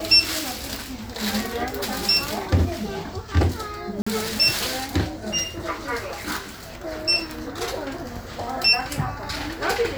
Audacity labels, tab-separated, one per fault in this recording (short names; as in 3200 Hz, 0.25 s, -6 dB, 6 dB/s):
4.020000	4.070000	gap 45 ms